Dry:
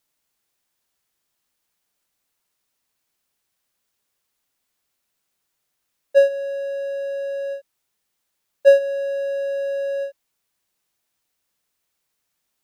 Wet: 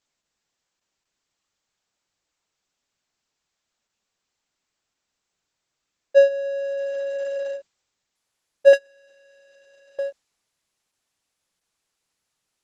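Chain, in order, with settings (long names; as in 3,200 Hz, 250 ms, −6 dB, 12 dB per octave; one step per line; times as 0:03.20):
0:08.73–0:09.99: power curve on the samples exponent 3
Opus 12 kbit/s 48,000 Hz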